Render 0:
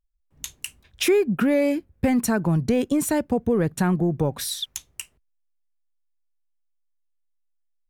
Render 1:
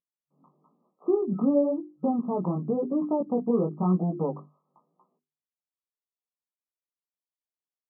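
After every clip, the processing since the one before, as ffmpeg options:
-af "afftfilt=real='re*between(b*sr/4096,140,1300)':imag='im*between(b*sr/4096,140,1300)':win_size=4096:overlap=0.75,bandreject=f=50:t=h:w=6,bandreject=f=100:t=h:w=6,bandreject=f=150:t=h:w=6,bandreject=f=200:t=h:w=6,bandreject=f=250:t=h:w=6,bandreject=f=300:t=h:w=6,bandreject=f=350:t=h:w=6,bandreject=f=400:t=h:w=6,flanger=delay=16:depth=5.6:speed=0.97"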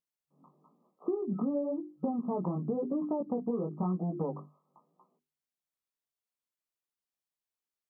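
-af "acompressor=threshold=-29dB:ratio=6"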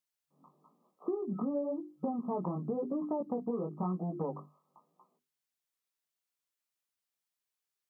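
-af "tiltshelf=f=810:g=-3.5"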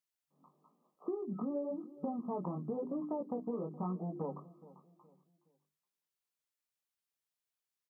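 -filter_complex "[0:a]asplit=2[a][b];[b]adelay=419,lowpass=f=1.1k:p=1,volume=-18dB,asplit=2[c][d];[d]adelay=419,lowpass=f=1.1k:p=1,volume=0.38,asplit=2[e][f];[f]adelay=419,lowpass=f=1.1k:p=1,volume=0.38[g];[a][c][e][g]amix=inputs=4:normalize=0,volume=-3.5dB"

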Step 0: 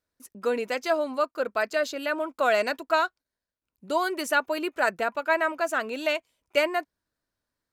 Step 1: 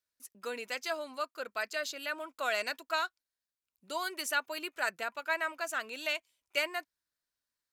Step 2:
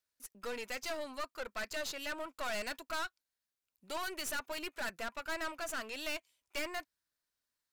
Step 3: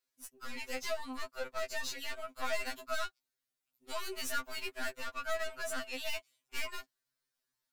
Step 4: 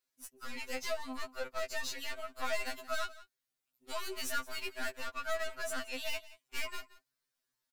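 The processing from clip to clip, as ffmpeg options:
-af "tiltshelf=f=1.2k:g=-7.5,volume=-8.5dB"
-af "aeval=exprs='(tanh(79.4*val(0)+0.55)-tanh(0.55))/79.4':c=same,volume=3dB"
-af "afftfilt=real='re*2.45*eq(mod(b,6),0)':imag='im*2.45*eq(mod(b,6),0)':win_size=2048:overlap=0.75,volume=3dB"
-af "aecho=1:1:175:0.119"

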